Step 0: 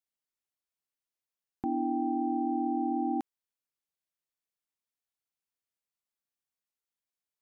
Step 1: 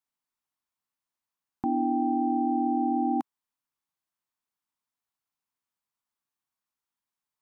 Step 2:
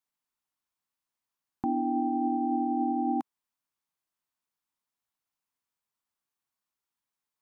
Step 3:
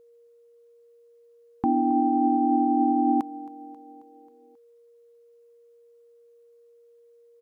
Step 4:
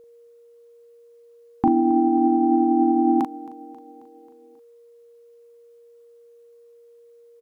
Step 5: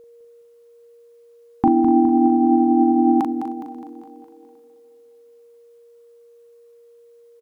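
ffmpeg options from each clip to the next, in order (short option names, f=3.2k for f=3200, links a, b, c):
-af "equalizer=f=125:t=o:w=1:g=3,equalizer=f=250:t=o:w=1:g=5,equalizer=f=500:t=o:w=1:g=-5,equalizer=f=1k:t=o:w=1:g=10"
-af "alimiter=limit=-20.5dB:level=0:latency=1:release=65"
-af "acontrast=52,aeval=exprs='val(0)+0.00224*sin(2*PI*470*n/s)':c=same,aecho=1:1:269|538|807|1076|1345:0.112|0.0662|0.0391|0.023|0.0136"
-filter_complex "[0:a]asplit=2[a][b];[b]adelay=39,volume=-5dB[c];[a][c]amix=inputs=2:normalize=0,volume=6dB"
-af "aecho=1:1:207|414|621|828|1035|1242:0.376|0.199|0.106|0.056|0.0297|0.0157,volume=2.5dB"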